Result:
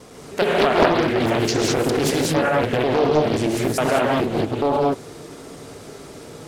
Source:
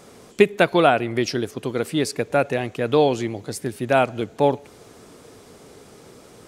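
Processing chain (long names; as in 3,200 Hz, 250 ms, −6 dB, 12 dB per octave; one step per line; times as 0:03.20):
slices reordered back to front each 105 ms, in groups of 3
reverb whose tail is shaped and stops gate 230 ms rising, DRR −3 dB
in parallel at −1.5 dB: compressor whose output falls as the input rises −21 dBFS, ratio −0.5
on the sum: highs frequency-modulated by the lows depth 0.62 ms
level −5 dB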